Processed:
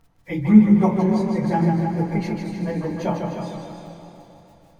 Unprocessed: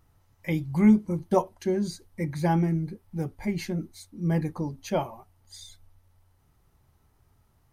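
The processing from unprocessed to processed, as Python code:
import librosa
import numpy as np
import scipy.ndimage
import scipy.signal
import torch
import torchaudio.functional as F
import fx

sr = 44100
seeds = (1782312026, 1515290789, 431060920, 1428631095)

p1 = fx.lowpass(x, sr, hz=2900.0, slope=6)
p2 = fx.low_shelf(p1, sr, hz=150.0, db=-5.5)
p3 = p2 + fx.echo_diffused(p2, sr, ms=505, feedback_pct=50, wet_db=-8.5, dry=0)
p4 = fx.room_shoebox(p3, sr, seeds[0], volume_m3=440.0, walls='furnished', distance_m=1.7)
p5 = fx.dmg_crackle(p4, sr, seeds[1], per_s=24.0, level_db=-44.0)
p6 = fx.stretch_vocoder_free(p5, sr, factor=0.62)
p7 = fx.echo_warbled(p6, sr, ms=153, feedback_pct=61, rate_hz=2.8, cents=69, wet_db=-5)
y = p7 * 10.0 ** (5.0 / 20.0)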